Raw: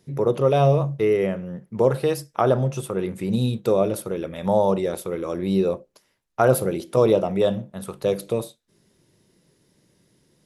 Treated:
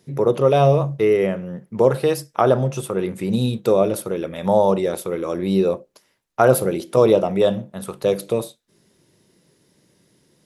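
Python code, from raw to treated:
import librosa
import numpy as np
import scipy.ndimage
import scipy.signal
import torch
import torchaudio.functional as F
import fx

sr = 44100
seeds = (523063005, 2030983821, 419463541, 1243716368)

y = fx.low_shelf(x, sr, hz=81.0, db=-9.0)
y = y * 10.0 ** (3.5 / 20.0)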